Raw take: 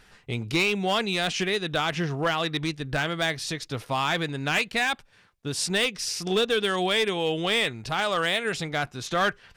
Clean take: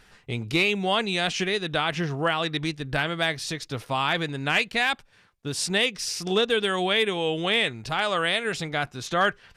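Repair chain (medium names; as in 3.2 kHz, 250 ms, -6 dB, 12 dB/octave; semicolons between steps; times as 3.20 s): clip repair -17.5 dBFS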